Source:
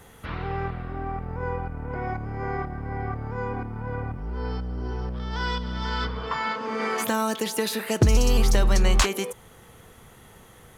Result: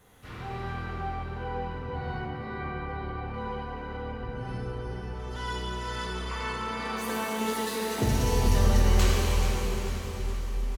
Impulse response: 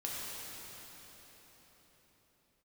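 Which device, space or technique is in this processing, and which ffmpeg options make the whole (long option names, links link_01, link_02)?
shimmer-style reverb: -filter_complex "[0:a]asplit=2[link_01][link_02];[link_02]asetrate=88200,aresample=44100,atempo=0.5,volume=-8dB[link_03];[link_01][link_03]amix=inputs=2:normalize=0[link_04];[1:a]atrim=start_sample=2205[link_05];[link_04][link_05]afir=irnorm=-1:irlink=0,asettb=1/sr,asplit=3[link_06][link_07][link_08];[link_06]atrim=end=2.264[link_09];[link_07]atrim=start=2.26:end=3.34,asetpts=PTS-STARTPTS,afade=type=in:duration=0.004:curve=qsin,afade=type=out:start_time=1.076:duration=0.004:curve=qsin,acrossover=split=3100[link_10][link_11];[link_11]acompressor=threshold=-54dB:ratio=4:attack=1:release=60[link_12];[link_10][link_12]amix=inputs=2:normalize=0[link_13];[link_08]atrim=start=3.336[link_14];[link_09][link_13]acrossfade=duration=0.004:curve1=hsin:curve2=qsin[link_15];[link_15][link_14]acrossfade=duration=0.004:curve1=qsin:curve2=hsin,aecho=1:1:431|862|1293|1724|2155|2586:0.251|0.146|0.0845|0.049|0.0284|0.0165,volume=-8dB"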